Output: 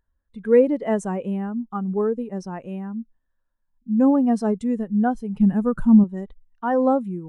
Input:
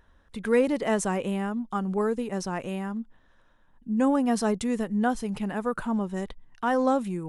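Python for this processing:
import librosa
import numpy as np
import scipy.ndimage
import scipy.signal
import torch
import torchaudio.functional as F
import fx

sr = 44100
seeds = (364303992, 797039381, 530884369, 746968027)

y = fx.bass_treble(x, sr, bass_db=11, treble_db=8, at=(5.4, 6.04))
y = fx.spectral_expand(y, sr, expansion=1.5)
y = y * librosa.db_to_amplitude(6.0)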